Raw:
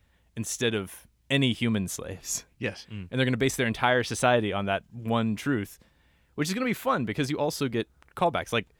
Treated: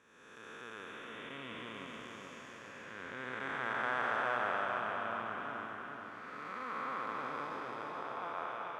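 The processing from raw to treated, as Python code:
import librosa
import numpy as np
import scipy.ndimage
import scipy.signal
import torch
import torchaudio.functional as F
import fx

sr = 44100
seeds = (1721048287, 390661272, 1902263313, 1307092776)

p1 = fx.spec_blur(x, sr, span_ms=662.0)
p2 = fx.bandpass_q(p1, sr, hz=1200.0, q=3.4)
p3 = p2 + fx.echo_feedback(p2, sr, ms=430, feedback_pct=51, wet_db=-4.0, dry=0)
y = F.gain(torch.from_numpy(p3), 5.5).numpy()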